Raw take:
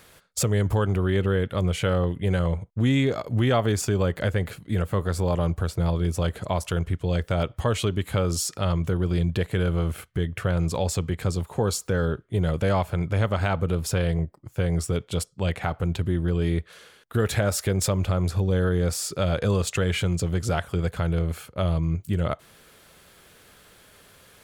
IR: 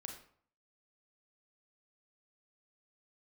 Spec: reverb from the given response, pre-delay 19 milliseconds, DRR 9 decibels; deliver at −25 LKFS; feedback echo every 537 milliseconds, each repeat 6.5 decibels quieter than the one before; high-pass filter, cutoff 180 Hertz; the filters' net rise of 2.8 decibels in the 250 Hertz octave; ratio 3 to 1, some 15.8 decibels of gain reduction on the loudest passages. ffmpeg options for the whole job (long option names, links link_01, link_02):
-filter_complex "[0:a]highpass=180,equalizer=frequency=250:width_type=o:gain=7,acompressor=threshold=-37dB:ratio=3,aecho=1:1:537|1074|1611|2148|2685|3222:0.473|0.222|0.105|0.0491|0.0231|0.0109,asplit=2[link_01][link_02];[1:a]atrim=start_sample=2205,adelay=19[link_03];[link_02][link_03]afir=irnorm=-1:irlink=0,volume=-5.5dB[link_04];[link_01][link_04]amix=inputs=2:normalize=0,volume=11.5dB"